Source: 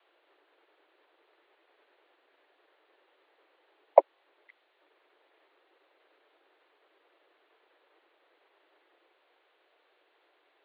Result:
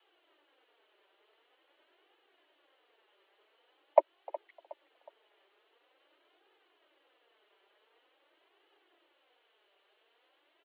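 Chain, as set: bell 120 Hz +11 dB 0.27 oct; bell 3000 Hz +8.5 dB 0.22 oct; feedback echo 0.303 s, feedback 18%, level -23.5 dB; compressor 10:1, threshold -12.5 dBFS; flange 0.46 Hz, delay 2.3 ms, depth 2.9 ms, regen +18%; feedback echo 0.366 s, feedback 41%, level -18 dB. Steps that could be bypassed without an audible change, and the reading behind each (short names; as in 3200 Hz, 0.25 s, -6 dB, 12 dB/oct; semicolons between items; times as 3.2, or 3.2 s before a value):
bell 120 Hz: input band starts at 300 Hz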